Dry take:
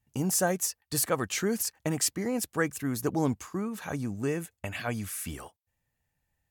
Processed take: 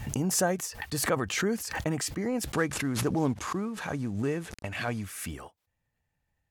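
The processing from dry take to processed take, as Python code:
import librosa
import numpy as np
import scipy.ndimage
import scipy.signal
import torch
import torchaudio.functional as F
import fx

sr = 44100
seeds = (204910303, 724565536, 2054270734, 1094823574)

y = fx.cvsd(x, sr, bps=64000, at=(2.52, 5.03))
y = fx.lowpass(y, sr, hz=3800.0, slope=6)
y = fx.pre_swell(y, sr, db_per_s=52.0)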